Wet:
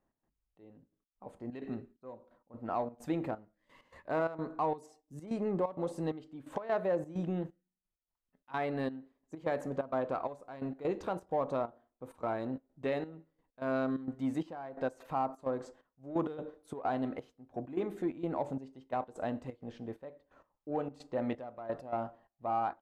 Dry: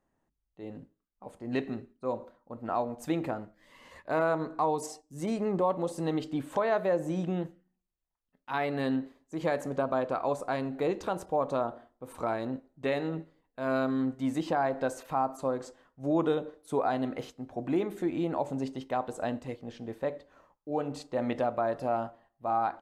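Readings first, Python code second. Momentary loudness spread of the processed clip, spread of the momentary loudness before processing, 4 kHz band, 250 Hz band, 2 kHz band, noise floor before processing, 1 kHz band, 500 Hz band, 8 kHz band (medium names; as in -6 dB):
13 LU, 13 LU, -9.5 dB, -5.0 dB, -6.5 dB, -82 dBFS, -5.0 dB, -5.0 dB, under -10 dB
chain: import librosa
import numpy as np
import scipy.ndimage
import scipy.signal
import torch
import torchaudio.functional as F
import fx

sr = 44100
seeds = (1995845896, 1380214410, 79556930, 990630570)

p1 = fx.high_shelf(x, sr, hz=2900.0, db=-8.0)
p2 = 10.0 ** (-28.5 / 20.0) * np.tanh(p1 / 10.0 ** (-28.5 / 20.0))
p3 = p1 + (p2 * 10.0 ** (-8.5 / 20.0))
p4 = fx.step_gate(p3, sr, bpm=130, pattern='x.xxx...x.xx', floor_db=-12.0, edge_ms=4.5)
y = p4 * 10.0 ** (-5.0 / 20.0)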